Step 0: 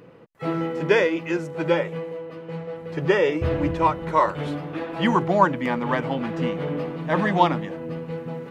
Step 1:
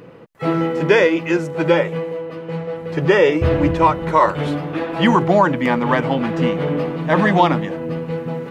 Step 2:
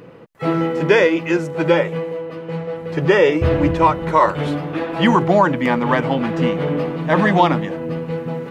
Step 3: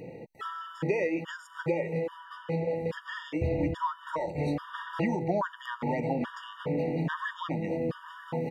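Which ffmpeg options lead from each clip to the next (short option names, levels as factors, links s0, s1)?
-af "alimiter=level_in=2.82:limit=0.891:release=50:level=0:latency=1,volume=0.794"
-af anull
-filter_complex "[0:a]asplit=2[s0][s1];[s1]adelay=932.9,volume=0.0794,highshelf=f=4000:g=-21[s2];[s0][s2]amix=inputs=2:normalize=0,acompressor=threshold=0.0631:ratio=6,afftfilt=real='re*gt(sin(2*PI*1.2*pts/sr)*(1-2*mod(floor(b*sr/1024/940),2)),0)':imag='im*gt(sin(2*PI*1.2*pts/sr)*(1-2*mod(floor(b*sr/1024/940),2)),0)':win_size=1024:overlap=0.75,volume=0.841"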